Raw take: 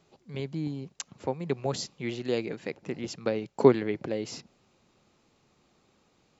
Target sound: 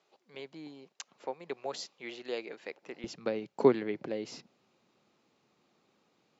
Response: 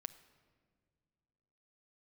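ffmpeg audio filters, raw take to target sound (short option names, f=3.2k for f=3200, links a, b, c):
-af "asetnsamples=n=441:p=0,asendcmd='3.04 highpass f 170',highpass=470,lowpass=6k,volume=-4dB"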